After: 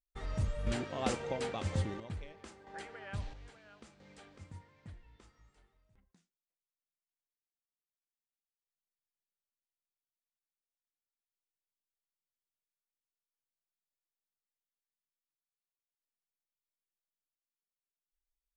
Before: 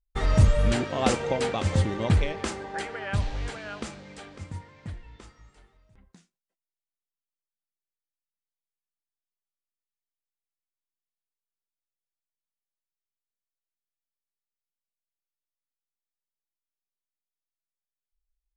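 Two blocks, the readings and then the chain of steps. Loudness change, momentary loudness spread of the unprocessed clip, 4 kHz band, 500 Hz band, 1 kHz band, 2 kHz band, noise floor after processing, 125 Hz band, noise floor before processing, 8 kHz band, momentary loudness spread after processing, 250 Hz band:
-12.0 dB, 20 LU, -12.0 dB, -11.5 dB, -11.5 dB, -12.5 dB, under -85 dBFS, -14.0 dB, under -85 dBFS, -11.5 dB, 22 LU, -12.0 dB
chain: random-step tremolo 1.5 Hz, depth 80%; trim -8.5 dB

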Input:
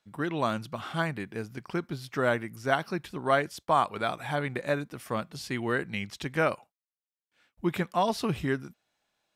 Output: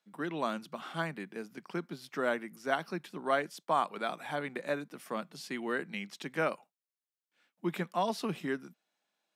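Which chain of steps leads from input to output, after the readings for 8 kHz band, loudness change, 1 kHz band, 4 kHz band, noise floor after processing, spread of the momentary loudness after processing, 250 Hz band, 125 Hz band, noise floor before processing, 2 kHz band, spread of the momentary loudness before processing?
-5.0 dB, -5.5 dB, -5.0 dB, -5.0 dB, under -85 dBFS, 9 LU, -5.5 dB, -10.0 dB, under -85 dBFS, -5.0 dB, 8 LU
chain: steep high-pass 160 Hz 48 dB/octave; trim -5 dB

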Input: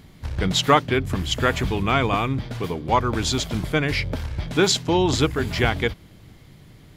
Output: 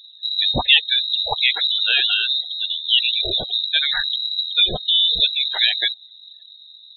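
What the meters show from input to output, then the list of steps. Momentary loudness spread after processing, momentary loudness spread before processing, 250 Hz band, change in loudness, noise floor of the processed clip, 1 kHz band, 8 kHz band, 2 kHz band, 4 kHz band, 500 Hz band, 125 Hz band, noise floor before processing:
7 LU, 9 LU, -15.5 dB, +5.0 dB, -46 dBFS, -9.5 dB, under -40 dB, +3.0 dB, +13.0 dB, -12.5 dB, -15.0 dB, -48 dBFS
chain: frequency inversion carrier 3.9 kHz; spectral gate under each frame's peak -15 dB strong; trim +2.5 dB

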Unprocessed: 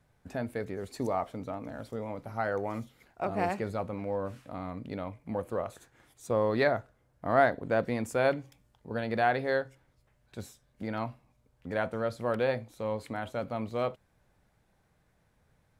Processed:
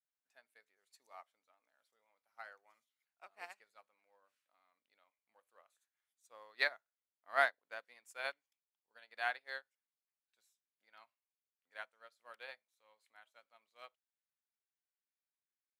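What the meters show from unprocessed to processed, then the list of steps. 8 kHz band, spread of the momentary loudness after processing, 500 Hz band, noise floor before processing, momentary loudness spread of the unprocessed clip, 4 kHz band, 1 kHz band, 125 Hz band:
-14.5 dB, 24 LU, -20.0 dB, -70 dBFS, 14 LU, -3.5 dB, -13.0 dB, under -40 dB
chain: Bessel high-pass 2 kHz, order 2; upward expansion 2.5:1, over -51 dBFS; trim +5 dB

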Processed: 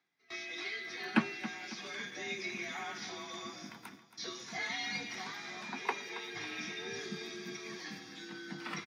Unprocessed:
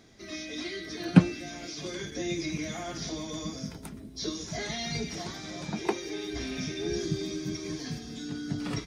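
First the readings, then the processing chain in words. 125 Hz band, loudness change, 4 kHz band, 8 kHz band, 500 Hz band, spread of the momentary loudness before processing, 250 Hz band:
-20.0 dB, -7.0 dB, -4.5 dB, -8.5 dB, -10.0 dB, 7 LU, -11.5 dB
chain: high-pass 140 Hz 12 dB/octave; gate with hold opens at -34 dBFS; frequency shift +47 Hz; reverse; upward compressor, threshold -49 dBFS; reverse; graphic EQ 250/500/1000/2000/8000 Hz -7/-11/+5/+6/-10 dB; on a send: feedback delay 274 ms, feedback 46%, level -13.5 dB; on the sum: trim -3.5 dB

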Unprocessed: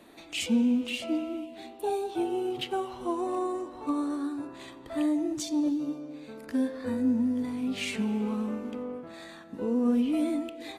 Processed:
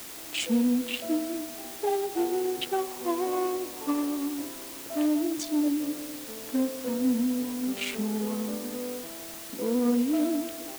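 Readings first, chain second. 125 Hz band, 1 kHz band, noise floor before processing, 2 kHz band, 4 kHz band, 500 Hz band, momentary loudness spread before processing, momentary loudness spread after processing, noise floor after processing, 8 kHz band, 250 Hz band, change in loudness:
no reading, +1.5 dB, -48 dBFS, +1.5 dB, +2.0 dB, +2.5 dB, 13 LU, 10 LU, -41 dBFS, +7.0 dB, +0.5 dB, +1.0 dB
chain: local Wiener filter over 25 samples; high-pass 250 Hz 12 dB/octave; in parallel at -6 dB: word length cut 6-bit, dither triangular

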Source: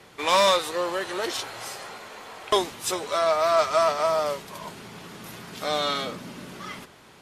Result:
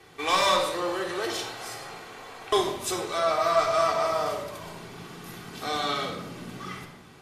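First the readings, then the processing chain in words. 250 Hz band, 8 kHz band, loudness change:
+0.5 dB, -2.0 dB, -2.0 dB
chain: simulated room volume 2900 m³, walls furnished, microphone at 3.6 m; trim -4.5 dB

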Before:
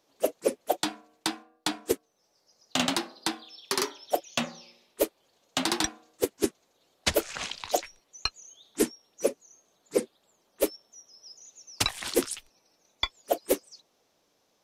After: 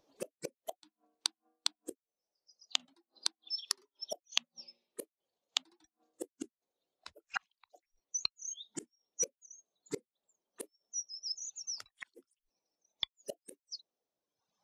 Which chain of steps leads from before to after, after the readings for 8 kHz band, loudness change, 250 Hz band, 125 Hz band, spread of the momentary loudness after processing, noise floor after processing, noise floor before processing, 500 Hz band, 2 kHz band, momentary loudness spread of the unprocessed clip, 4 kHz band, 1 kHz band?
-5.0 dB, -9.0 dB, -19.5 dB, -18.5 dB, 16 LU, under -85 dBFS, -71 dBFS, -19.0 dB, -11.5 dB, 18 LU, -6.0 dB, -17.0 dB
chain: reverb removal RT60 1.4 s; in parallel at -2 dB: peak limiter -19.5 dBFS, peak gain reduction 9 dB; on the sum: inverted gate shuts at -26 dBFS, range -36 dB; spectral contrast expander 1.5:1; trim +3.5 dB

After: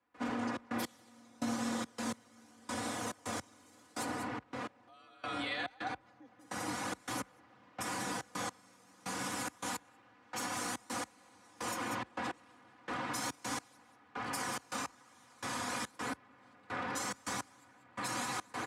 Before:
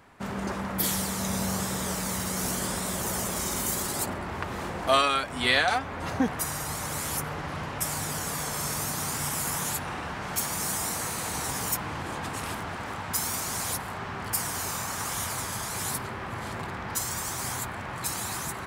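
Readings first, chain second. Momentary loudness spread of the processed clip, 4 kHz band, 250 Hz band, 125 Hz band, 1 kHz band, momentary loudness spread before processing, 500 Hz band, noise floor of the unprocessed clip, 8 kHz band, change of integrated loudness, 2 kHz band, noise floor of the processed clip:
9 LU, -11.5 dB, -7.0 dB, -16.0 dB, -8.5 dB, 8 LU, -10.5 dB, -36 dBFS, -13.5 dB, -10.5 dB, -9.0 dB, -64 dBFS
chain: delay 188 ms -8 dB; gain riding 2 s; low-pass 8.5 kHz 12 dB/octave; treble shelf 6.2 kHz -6.5 dB; peak limiter -22 dBFS, peak gain reduction 10.5 dB; hum notches 60/120/180 Hz; comb 4.2 ms, depth 89%; filtered feedback delay 236 ms, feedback 81%, low-pass 1.1 kHz, level -9.5 dB; trance gate ".xxx.x..." 106 bpm -24 dB; frequency shift +41 Hz; high-pass 120 Hz 6 dB/octave; trim -7.5 dB

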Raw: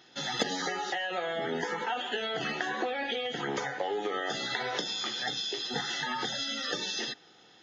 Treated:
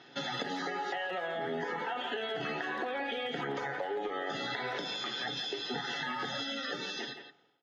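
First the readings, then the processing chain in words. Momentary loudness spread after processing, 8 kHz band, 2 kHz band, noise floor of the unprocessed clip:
1 LU, no reading, -2.5 dB, -58 dBFS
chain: fade out at the end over 1.13 s; high-pass 85 Hz; treble shelf 5.5 kHz -12 dB; hum notches 50/100/150 Hz; comb 7.2 ms, depth 31%; in parallel at +2 dB: peak limiter -26.5 dBFS, peak gain reduction 11.5 dB; on the sum: compression 5:1, threshold -31 dBFS, peak gain reduction 9.5 dB; distance through air 69 m; speakerphone echo 170 ms, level -8 dB; trim -2 dB

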